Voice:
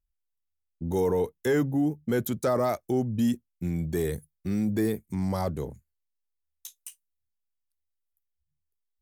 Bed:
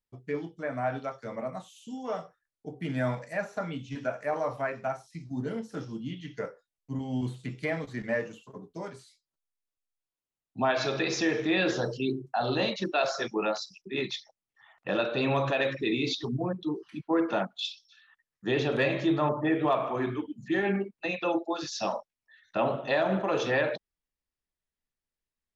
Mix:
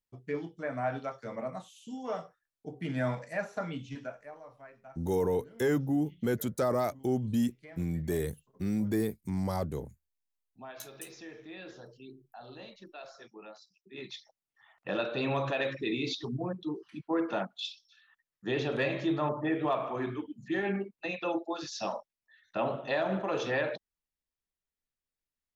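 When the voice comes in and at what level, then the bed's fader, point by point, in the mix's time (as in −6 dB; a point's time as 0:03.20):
4.15 s, −3.5 dB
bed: 0:03.88 −2 dB
0:04.39 −20 dB
0:13.73 −20 dB
0:14.30 −4 dB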